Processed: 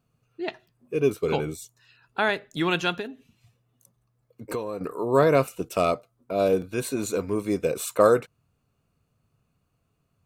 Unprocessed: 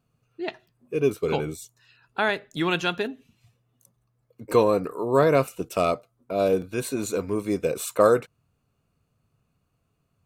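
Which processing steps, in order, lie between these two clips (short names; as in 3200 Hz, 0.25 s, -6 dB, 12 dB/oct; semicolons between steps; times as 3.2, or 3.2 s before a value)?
2.93–4.81 compressor 4:1, threshold -30 dBFS, peak gain reduction 14 dB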